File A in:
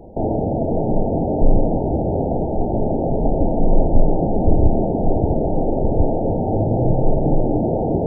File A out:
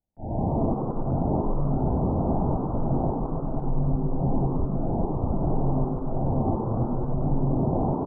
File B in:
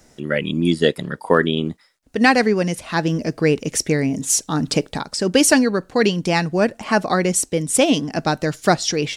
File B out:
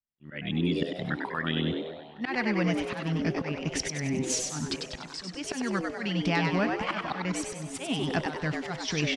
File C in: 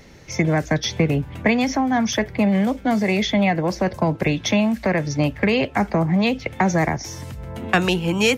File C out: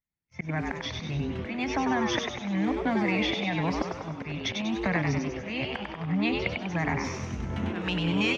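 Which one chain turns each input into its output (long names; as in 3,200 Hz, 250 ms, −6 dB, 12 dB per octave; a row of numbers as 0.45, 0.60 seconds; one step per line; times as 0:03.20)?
noise gate −32 dBFS, range −50 dB
low-pass filter 3,100 Hz 12 dB per octave
parametric band 420 Hz −14.5 dB 1.2 octaves
volume swells 443 ms
downward compressor, threshold −28 dBFS
on a send: echo with shifted repeats 97 ms, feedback 50%, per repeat +120 Hz, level −4 dB
on the sum: feedback echo with a swinging delay time 263 ms, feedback 63%, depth 71 cents, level −20.5 dB
normalise the peak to −12 dBFS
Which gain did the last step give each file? +5.5, +3.5, +3.5 decibels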